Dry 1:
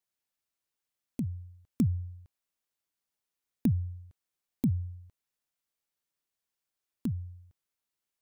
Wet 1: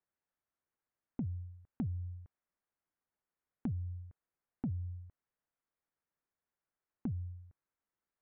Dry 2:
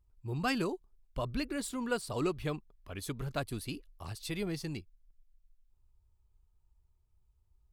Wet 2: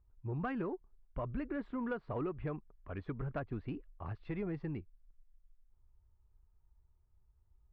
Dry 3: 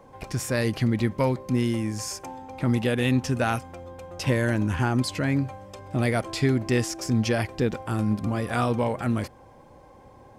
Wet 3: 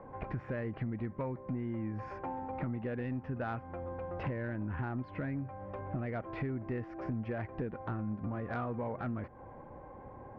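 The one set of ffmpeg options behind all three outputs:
-af "lowpass=frequency=1900:width=0.5412,lowpass=frequency=1900:width=1.3066,acompressor=threshold=-34dB:ratio=6,asoftclip=type=tanh:threshold=-27.5dB,volume=1dB"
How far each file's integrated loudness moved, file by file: −8.5, −4.0, −13.0 LU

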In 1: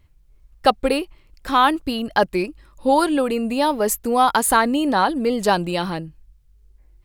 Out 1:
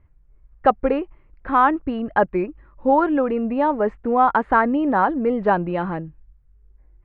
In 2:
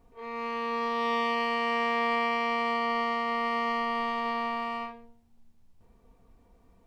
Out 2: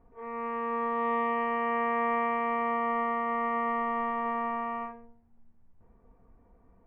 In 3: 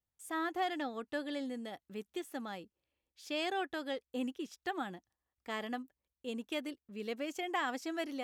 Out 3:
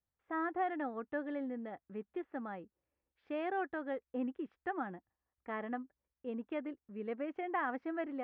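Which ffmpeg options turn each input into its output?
-af "lowpass=frequency=1900:width=0.5412,lowpass=frequency=1900:width=1.3066"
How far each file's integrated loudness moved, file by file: −0.5, −1.0, −1.0 LU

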